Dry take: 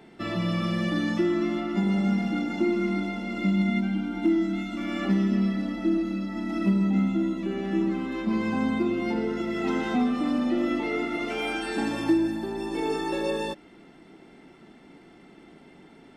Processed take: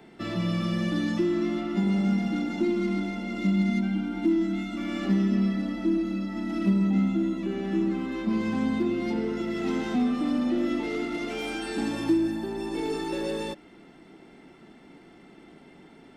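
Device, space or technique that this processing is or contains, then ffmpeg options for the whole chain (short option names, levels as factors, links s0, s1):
one-band saturation: -filter_complex "[0:a]acrossover=split=450|3400[s0][s1][s2];[s1]asoftclip=type=tanh:threshold=0.0168[s3];[s0][s3][s2]amix=inputs=3:normalize=0"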